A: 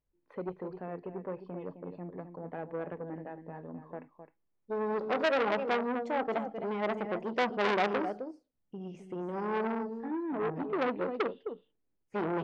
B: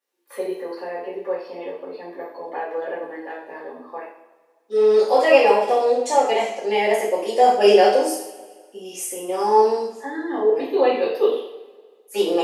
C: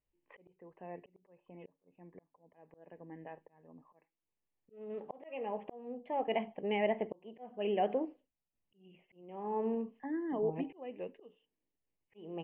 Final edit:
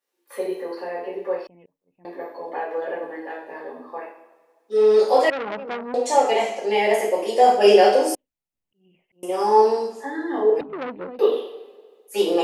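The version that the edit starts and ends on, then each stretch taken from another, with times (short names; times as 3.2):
B
1.47–2.05 from C
5.3–5.94 from A
8.15–9.23 from C
10.61–11.19 from A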